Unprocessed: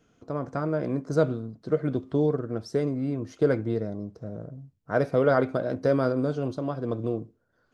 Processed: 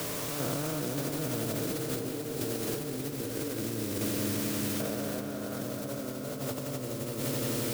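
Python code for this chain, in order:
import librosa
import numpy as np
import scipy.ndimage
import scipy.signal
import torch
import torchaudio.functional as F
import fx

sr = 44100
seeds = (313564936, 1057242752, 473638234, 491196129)

p1 = fx.spec_steps(x, sr, hold_ms=400)
p2 = np.clip(p1, -10.0 ** (-28.0 / 20.0), 10.0 ** (-28.0 / 20.0))
p3 = p1 + F.gain(torch.from_numpy(p2), -11.0).numpy()
p4 = scipy.signal.sosfilt(scipy.signal.butter(4, 85.0, 'highpass', fs=sr, output='sos'), p3)
p5 = fx.quant_dither(p4, sr, seeds[0], bits=6, dither='triangular')
p6 = fx.echo_swell(p5, sr, ms=86, loudest=5, wet_db=-12)
p7 = fx.over_compress(p6, sr, threshold_db=-29.0, ratio=-0.5)
p8 = p7 + fx.echo_filtered(p7, sr, ms=196, feedback_pct=84, hz=3500.0, wet_db=-11, dry=0)
p9 = fx.band_squash(p8, sr, depth_pct=40)
y = F.gain(torch.from_numpy(p9), -5.0).numpy()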